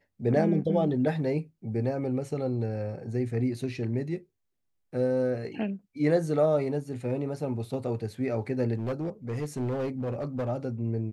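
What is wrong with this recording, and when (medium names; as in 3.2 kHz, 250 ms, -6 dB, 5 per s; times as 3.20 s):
8.78–10.49 s: clipped -26.5 dBFS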